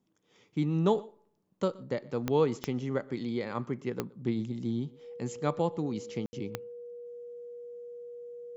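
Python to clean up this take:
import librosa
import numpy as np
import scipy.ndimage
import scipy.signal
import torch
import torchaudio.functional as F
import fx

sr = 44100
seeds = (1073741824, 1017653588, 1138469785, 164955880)

y = fx.fix_declick_ar(x, sr, threshold=10.0)
y = fx.notch(y, sr, hz=480.0, q=30.0)
y = fx.fix_ambience(y, sr, seeds[0], print_start_s=1.11, print_end_s=1.61, start_s=6.26, end_s=6.33)
y = fx.fix_echo_inverse(y, sr, delay_ms=122, level_db=-23.0)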